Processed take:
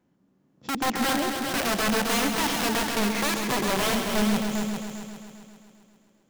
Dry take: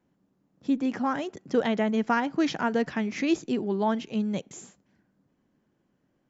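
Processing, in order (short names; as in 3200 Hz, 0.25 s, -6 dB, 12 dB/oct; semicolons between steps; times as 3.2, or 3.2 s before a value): wrapped overs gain 23 dB; multi-head echo 0.133 s, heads all three, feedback 47%, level -9 dB; harmonic-percussive split percussive -6 dB; gain +4.5 dB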